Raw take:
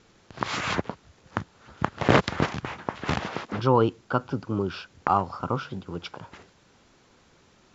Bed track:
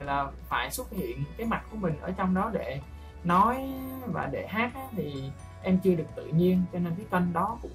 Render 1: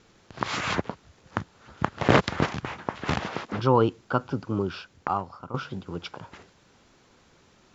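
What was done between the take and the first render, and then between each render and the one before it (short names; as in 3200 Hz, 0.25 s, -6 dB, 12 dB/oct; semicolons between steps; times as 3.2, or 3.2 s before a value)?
4.61–5.54 fade out, to -13 dB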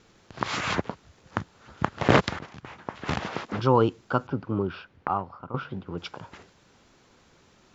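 2.39–3.32 fade in, from -21 dB; 4.27–5.98 LPF 2700 Hz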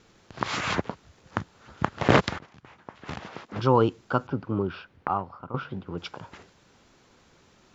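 2.38–3.56 gain -8 dB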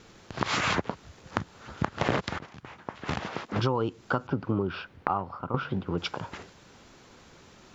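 in parallel at -1 dB: limiter -12 dBFS, peak gain reduction 9 dB; on the sum: compressor 8:1, threshold -23 dBFS, peak gain reduction 13.5 dB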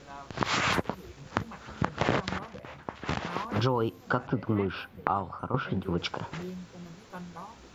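add bed track -16 dB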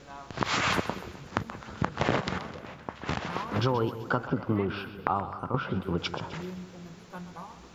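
split-band echo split 490 Hz, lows 0.18 s, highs 0.129 s, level -12.5 dB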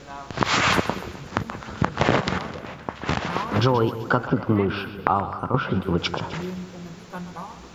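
gain +7 dB; limiter -1 dBFS, peak gain reduction 2.5 dB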